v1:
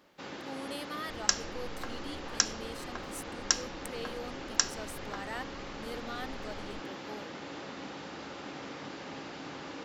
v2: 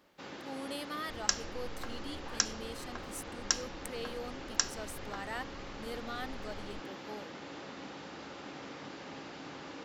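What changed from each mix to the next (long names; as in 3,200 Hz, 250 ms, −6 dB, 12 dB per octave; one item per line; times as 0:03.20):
first sound −3.0 dB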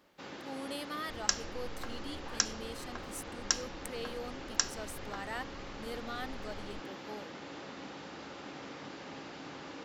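nothing changed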